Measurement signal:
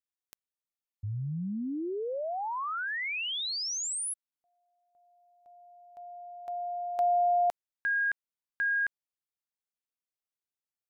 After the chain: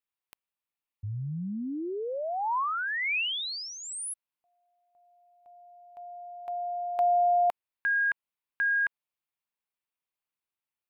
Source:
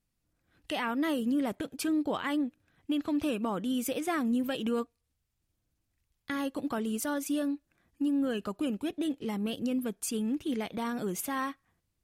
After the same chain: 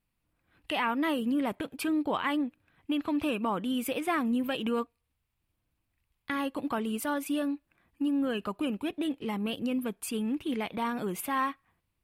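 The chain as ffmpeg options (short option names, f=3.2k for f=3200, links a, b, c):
-af "equalizer=f=1k:t=o:w=0.67:g=6,equalizer=f=2.5k:t=o:w=0.67:g=6,equalizer=f=6.3k:t=o:w=0.67:g=-9"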